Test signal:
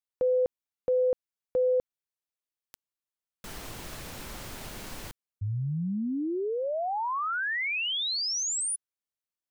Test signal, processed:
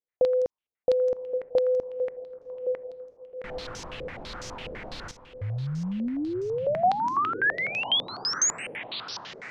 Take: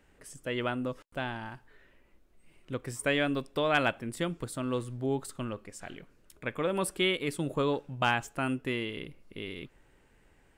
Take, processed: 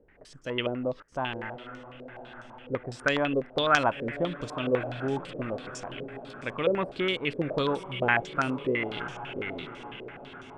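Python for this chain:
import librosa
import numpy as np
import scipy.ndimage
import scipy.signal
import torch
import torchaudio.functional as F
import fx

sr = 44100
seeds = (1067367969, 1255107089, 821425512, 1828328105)

y = fx.echo_diffused(x, sr, ms=1024, feedback_pct=51, wet_db=-12.5)
y = fx.filter_held_lowpass(y, sr, hz=12.0, low_hz=490.0, high_hz=5900.0)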